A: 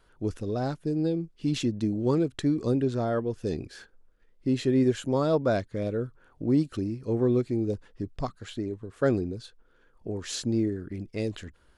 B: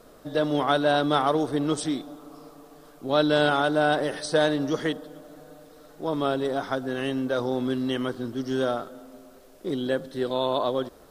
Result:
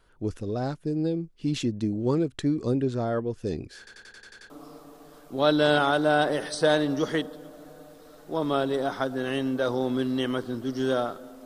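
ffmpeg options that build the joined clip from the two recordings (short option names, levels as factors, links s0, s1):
-filter_complex "[0:a]apad=whole_dur=11.45,atrim=end=11.45,asplit=8[s0][s1][s2][s3][s4][s5][s6][s7];[s0]atrim=end=3.872[s8];[s1]atrim=start=3.778:end=3.872[s9];[s2]atrim=start=3.778:end=3.872[s10];[s3]atrim=start=3.778:end=3.872[s11];[s4]atrim=start=3.778:end=3.872[s12];[s5]atrim=start=3.778:end=3.872[s13];[s6]atrim=start=3.778:end=3.872[s14];[s7]atrim=start=3.778:end=3.872[s15];[1:a]atrim=start=2.208:end=9.16[s16];[s8][s9]acrossfade=d=0.004:c1=hsin:c2=hsin[s17];[s17][s10]acrossfade=d=0.004:c1=hsin:c2=hsin[s18];[s18][s11]acrossfade=d=0.004:c1=hsin:c2=hsin[s19];[s19][s12]acrossfade=d=0.004:c1=hsin:c2=hsin[s20];[s20][s13]acrossfade=d=0.004:c1=hsin:c2=hsin[s21];[s21][s14]acrossfade=d=0.004:c1=hsin:c2=hsin[s22];[s22][s15]acrossfade=d=0.004:c1=hsin:c2=hsin[s23];[s23][s16]acrossfade=d=0.004:c1=hsin:c2=hsin"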